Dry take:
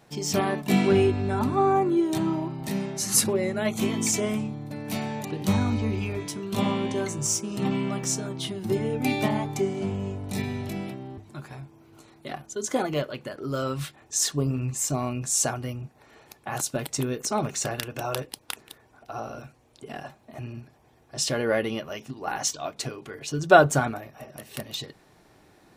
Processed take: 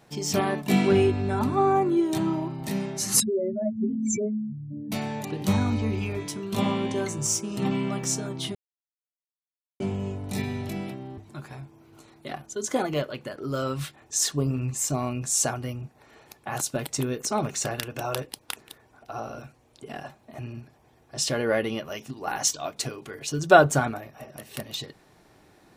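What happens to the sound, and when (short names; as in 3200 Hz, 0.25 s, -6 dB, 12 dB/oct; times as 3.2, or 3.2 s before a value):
3.2–4.92 spectral contrast raised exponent 4
8.55–9.8 mute
21.85–23.53 high shelf 5600 Hz +5.5 dB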